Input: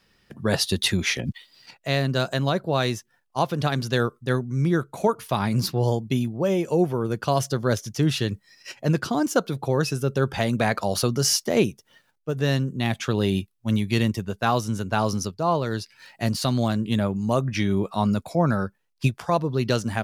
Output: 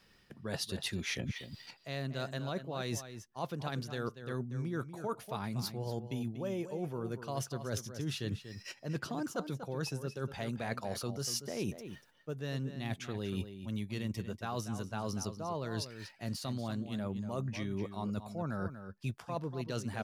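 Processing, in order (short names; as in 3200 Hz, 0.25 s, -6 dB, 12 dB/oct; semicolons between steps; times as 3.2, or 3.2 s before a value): reverse; compressor 10:1, threshold -32 dBFS, peak gain reduction 18 dB; reverse; outdoor echo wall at 41 m, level -10 dB; gain -2 dB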